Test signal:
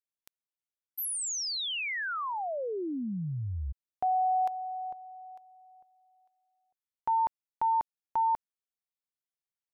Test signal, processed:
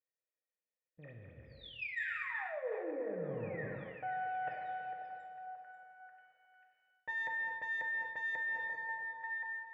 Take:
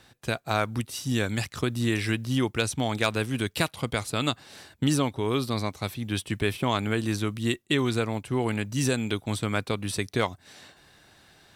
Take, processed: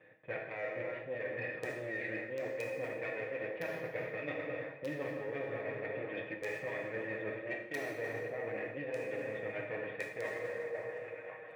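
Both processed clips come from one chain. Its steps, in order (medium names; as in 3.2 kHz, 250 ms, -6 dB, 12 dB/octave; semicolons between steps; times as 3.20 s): comb filter that takes the minimum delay 6.4 ms; dynamic bell 2.2 kHz, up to +5 dB, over -45 dBFS, Q 0.78; cascade formant filter e; Chebyshev shaper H 8 -36 dB, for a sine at -24 dBFS; repeats whose band climbs or falls 538 ms, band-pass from 590 Hz, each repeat 0.7 oct, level -11 dB; in parallel at -3 dB: integer overflow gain 27 dB; on the sum: high-pass 110 Hz 12 dB/octave; plate-style reverb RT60 2.7 s, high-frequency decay 0.6×, DRR 0.5 dB; reverse; compression 10:1, threshold -43 dBFS; reverse; trim +7 dB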